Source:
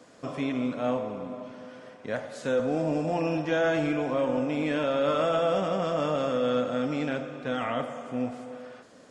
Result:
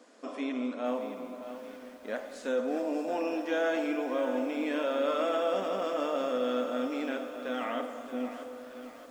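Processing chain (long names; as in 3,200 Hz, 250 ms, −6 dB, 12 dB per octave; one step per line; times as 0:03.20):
linear-phase brick-wall high-pass 200 Hz
feedback echo at a low word length 625 ms, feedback 55%, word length 8 bits, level −11 dB
level −4 dB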